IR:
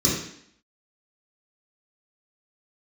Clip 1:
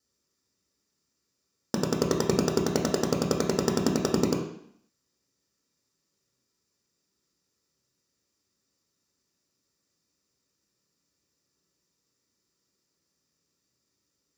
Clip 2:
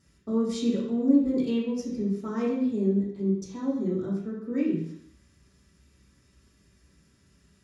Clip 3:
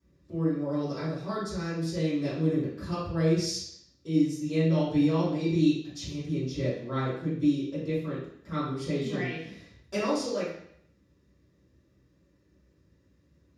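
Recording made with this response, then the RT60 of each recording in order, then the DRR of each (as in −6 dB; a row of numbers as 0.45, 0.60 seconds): 2; 0.65, 0.65, 0.65 seconds; 0.0, −7.0, −15.5 decibels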